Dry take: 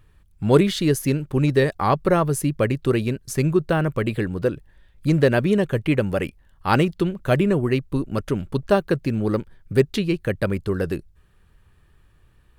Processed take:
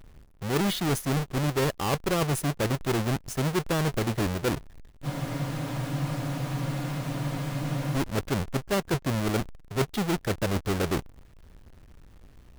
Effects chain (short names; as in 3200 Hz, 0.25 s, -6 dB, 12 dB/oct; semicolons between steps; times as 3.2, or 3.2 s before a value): half-waves squared off; reverse; compressor 6:1, threshold -25 dBFS, peak gain reduction 17 dB; reverse; spectral freeze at 5.07, 2.89 s